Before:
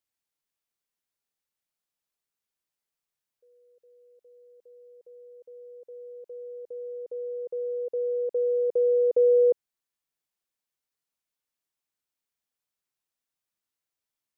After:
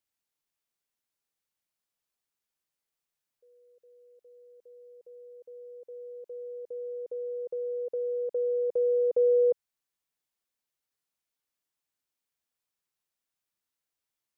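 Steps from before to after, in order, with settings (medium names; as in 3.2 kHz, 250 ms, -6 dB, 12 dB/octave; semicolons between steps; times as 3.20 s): dynamic bell 340 Hz, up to -7 dB, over -38 dBFS, Q 1.5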